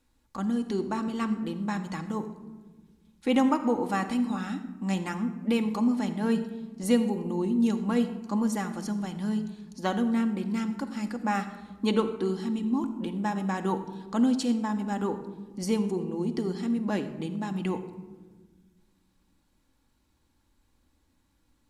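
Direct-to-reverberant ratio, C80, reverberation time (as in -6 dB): 5.5 dB, 12.5 dB, 1.4 s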